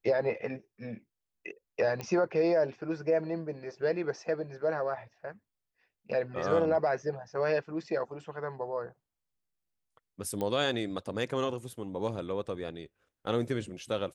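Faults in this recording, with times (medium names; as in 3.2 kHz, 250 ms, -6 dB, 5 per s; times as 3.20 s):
2.01 s: pop -22 dBFS
10.41 s: pop -21 dBFS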